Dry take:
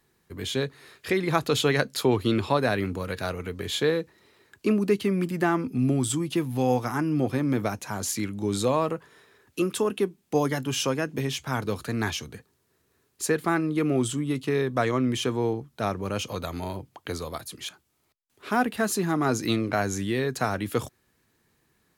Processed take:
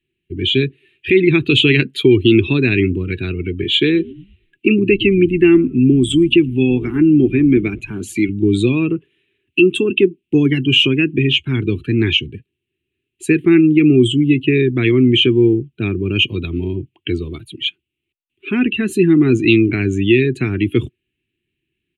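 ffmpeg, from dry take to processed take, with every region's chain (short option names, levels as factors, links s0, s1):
-filter_complex "[0:a]asettb=1/sr,asplit=3[s0][s1][s2];[s0]atrim=end=3.644[s3];[s1]atrim=start=3.64:end=8.29,asetpts=PTS-STARTPTS,afade=t=in:d=0.004:c=qsin,afade=t=out:st=4.646:d=0.004:c=qsin,highpass=150,asplit=6[s4][s5][s6][s7][s8][s9];[s5]adelay=113,afreqshift=-98,volume=0.0841[s10];[s6]adelay=226,afreqshift=-196,volume=0.0507[s11];[s7]adelay=339,afreqshift=-294,volume=0.0302[s12];[s8]adelay=452,afreqshift=-392,volume=0.0182[s13];[s9]adelay=565,afreqshift=-490,volume=0.011[s14];[s4][s10][s11][s12][s13][s14]amix=inputs=6:normalize=0,atrim=end_sample=205065[s15];[s2]atrim=start=8.286[s16];[s3][s15]acrossfade=d=0.004:c1=hsin:c2=qsin[s17];[s17][s16]acrossfade=d=0.004:c1=qsin:c2=hsin,afftdn=nr=20:nf=-37,firequalizer=gain_entry='entry(130,0);entry(210,-4);entry(360,6);entry(530,-26);entry(760,-27);entry(1200,-21);entry(2700,13);entry(5100,-26);entry(8300,-12);entry(13000,-18)':delay=0.05:min_phase=1,alimiter=level_in=5.31:limit=0.891:release=50:level=0:latency=1,volume=0.891"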